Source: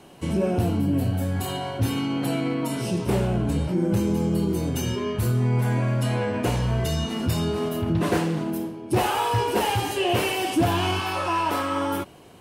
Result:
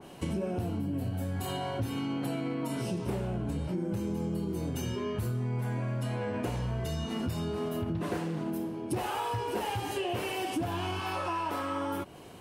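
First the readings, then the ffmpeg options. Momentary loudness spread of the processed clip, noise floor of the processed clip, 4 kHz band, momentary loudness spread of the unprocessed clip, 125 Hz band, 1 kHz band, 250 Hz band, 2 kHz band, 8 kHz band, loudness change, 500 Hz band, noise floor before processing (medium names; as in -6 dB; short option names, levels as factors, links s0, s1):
2 LU, -39 dBFS, -10.5 dB, 4 LU, -9.0 dB, -8.5 dB, -8.5 dB, -9.5 dB, -10.5 dB, -9.0 dB, -8.5 dB, -38 dBFS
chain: -af "acompressor=threshold=0.0316:ratio=6,adynamicequalizer=threshold=0.00447:dfrequency=2100:dqfactor=0.7:tfrequency=2100:tqfactor=0.7:attack=5:release=100:ratio=0.375:range=1.5:mode=cutabove:tftype=highshelf"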